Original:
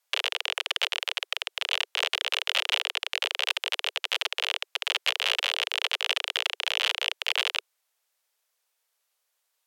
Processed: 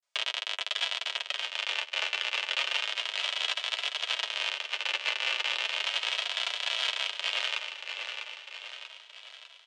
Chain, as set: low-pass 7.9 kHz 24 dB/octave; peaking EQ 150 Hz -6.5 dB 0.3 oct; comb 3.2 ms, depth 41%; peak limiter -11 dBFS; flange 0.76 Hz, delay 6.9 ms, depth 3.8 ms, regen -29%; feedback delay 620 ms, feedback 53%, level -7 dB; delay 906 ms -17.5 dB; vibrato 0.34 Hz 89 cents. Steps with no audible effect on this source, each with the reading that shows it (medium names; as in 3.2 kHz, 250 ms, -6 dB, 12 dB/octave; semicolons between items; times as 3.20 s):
peaking EQ 150 Hz: input has nothing below 360 Hz